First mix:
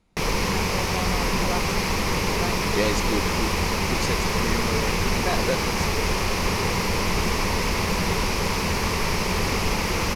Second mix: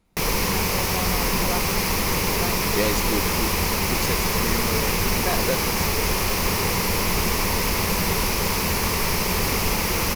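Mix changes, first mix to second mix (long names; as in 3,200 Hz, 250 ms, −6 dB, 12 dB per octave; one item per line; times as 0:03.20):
speech: add high-shelf EQ 4,700 Hz −5.5 dB
master: remove high-frequency loss of the air 53 metres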